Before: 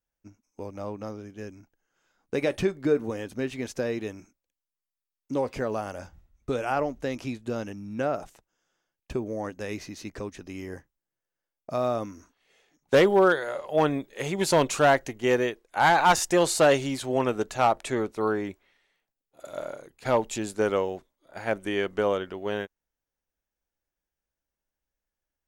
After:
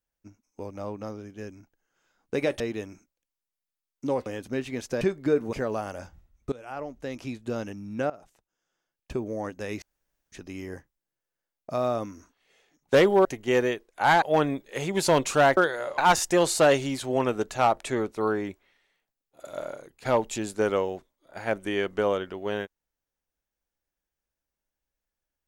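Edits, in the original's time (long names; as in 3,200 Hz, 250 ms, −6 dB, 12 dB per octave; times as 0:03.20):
0:02.60–0:03.12: swap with 0:03.87–0:05.53
0:06.52–0:07.53: fade in, from −19 dB
0:08.10–0:09.25: fade in, from −18 dB
0:09.82–0:10.32: fill with room tone
0:13.25–0:13.66: swap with 0:15.01–0:15.98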